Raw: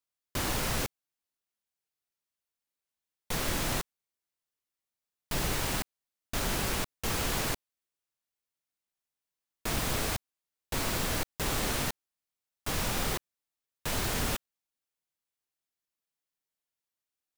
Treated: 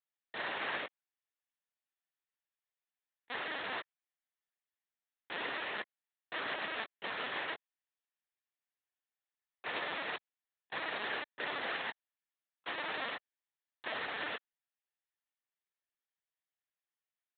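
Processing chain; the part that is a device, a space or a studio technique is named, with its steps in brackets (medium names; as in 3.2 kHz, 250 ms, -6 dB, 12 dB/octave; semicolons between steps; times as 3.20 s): talking toy (LPC vocoder at 8 kHz pitch kept; high-pass 460 Hz 12 dB/octave; peaking EQ 1.8 kHz +7.5 dB 0.26 oct); trim -4 dB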